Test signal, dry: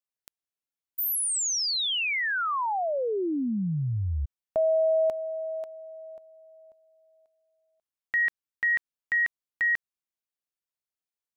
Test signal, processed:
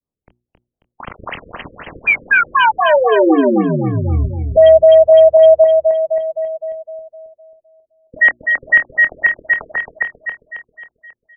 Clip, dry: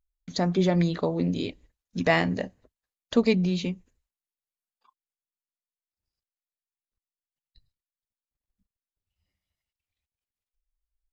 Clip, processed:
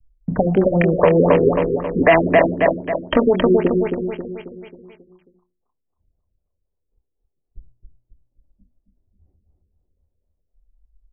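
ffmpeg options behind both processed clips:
-filter_complex "[0:a]bandreject=f=60:t=h:w=6,bandreject=f=120:t=h:w=6,bandreject=f=180:t=h:w=6,bandreject=f=240:t=h:w=6,bandreject=f=300:t=h:w=6,bandreject=f=360:t=h:w=6,adynamicequalizer=threshold=0.0112:dfrequency=770:dqfactor=1.2:tfrequency=770:tqfactor=1.2:attack=5:release=100:ratio=0.4:range=3:mode=boostabove:tftype=bell,acrossover=split=450|2200[a][b][c];[a]acompressor=threshold=-38dB:ratio=4[d];[b]acompressor=threshold=-28dB:ratio=5[e];[c]acompressor=threshold=-42dB:ratio=2[f];[d][e][f]amix=inputs=3:normalize=0,flanger=delay=0.8:depth=2.8:regen=39:speed=0.18:shape=triangular,acrossover=split=420|620[g][h][i];[i]acrusher=bits=5:mix=0:aa=0.000001[j];[g][h][j]amix=inputs=3:normalize=0,asplit=2[k][l];[l]adelay=25,volume=-10dB[m];[k][m]amix=inputs=2:normalize=0,asplit=2[n][o];[o]aecho=0:1:270|540|810|1080|1350|1620:0.531|0.255|0.122|0.0587|0.0282|0.0135[p];[n][p]amix=inputs=2:normalize=0,alimiter=level_in=25.5dB:limit=-1dB:release=50:level=0:latency=1,afftfilt=real='re*lt(b*sr/1024,520*pow(3300/520,0.5+0.5*sin(2*PI*3.9*pts/sr)))':imag='im*lt(b*sr/1024,520*pow(3300/520,0.5+0.5*sin(2*PI*3.9*pts/sr)))':win_size=1024:overlap=0.75,volume=-1dB"

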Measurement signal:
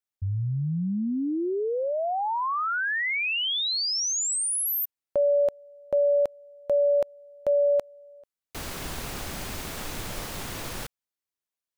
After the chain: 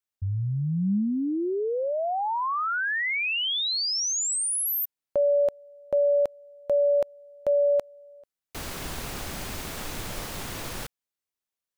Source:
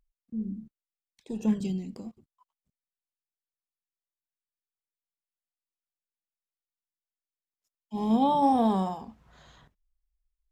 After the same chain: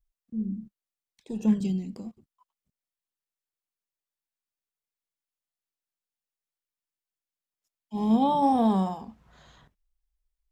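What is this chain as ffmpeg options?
-af "adynamicequalizer=threshold=0.0112:dfrequency=200:dqfactor=4.2:tfrequency=200:tqfactor=4.2:attack=5:release=100:ratio=0.375:range=2:mode=boostabove:tftype=bell"

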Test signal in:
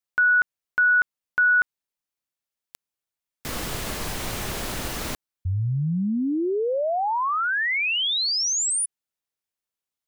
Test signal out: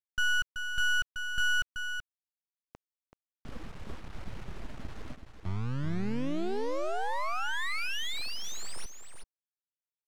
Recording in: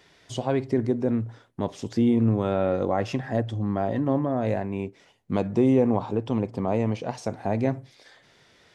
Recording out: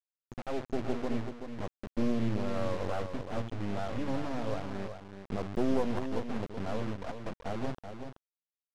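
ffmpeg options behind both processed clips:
-af "aeval=exprs='if(lt(val(0),0),0.708*val(0),val(0))':c=same,aemphasis=mode=production:type=75fm,afftfilt=real='re*gte(hypot(re,im),0.0794)':imag='im*gte(hypot(re,im),0.0794)':win_size=1024:overlap=0.75,highshelf=f=2.5k:g=-10.5,areverse,acompressor=mode=upward:threshold=-33dB:ratio=2.5:attack=0.51:release=57:knee=2.83:detection=peak,areverse,acrusher=bits=3:dc=4:mix=0:aa=0.000001,adynamicsmooth=sensitivity=4.5:basefreq=1.6k,aecho=1:1:380:0.398,volume=-3dB"

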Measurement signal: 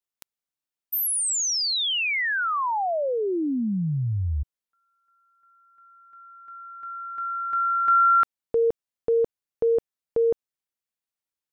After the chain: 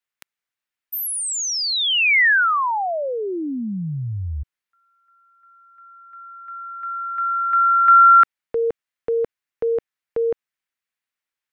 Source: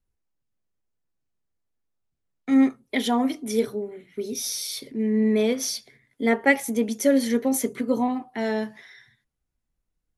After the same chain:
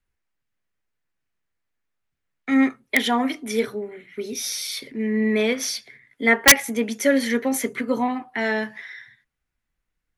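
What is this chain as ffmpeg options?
-filter_complex "[0:a]equalizer=f=1.9k:w=0.79:g=11.5,acrossover=split=360[a][b];[b]aeval=exprs='(mod(1.26*val(0)+1,2)-1)/1.26':c=same[c];[a][c]amix=inputs=2:normalize=0,volume=-1dB"

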